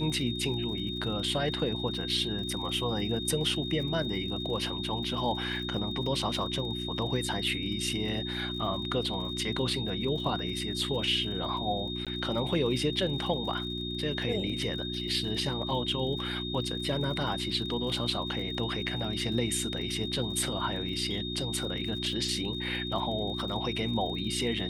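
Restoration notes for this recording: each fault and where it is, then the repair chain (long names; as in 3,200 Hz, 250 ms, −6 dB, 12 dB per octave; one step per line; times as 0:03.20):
surface crackle 55 per second −40 dBFS
mains hum 60 Hz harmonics 6 −37 dBFS
whistle 3,700 Hz −36 dBFS
0:12.05–0:12.07: drop-out 17 ms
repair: click removal
hum removal 60 Hz, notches 6
notch filter 3,700 Hz, Q 30
repair the gap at 0:12.05, 17 ms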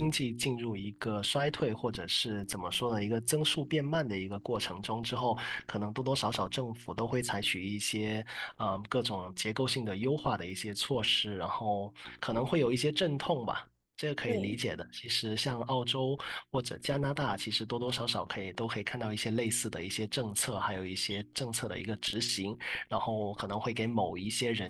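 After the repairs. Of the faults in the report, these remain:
none of them is left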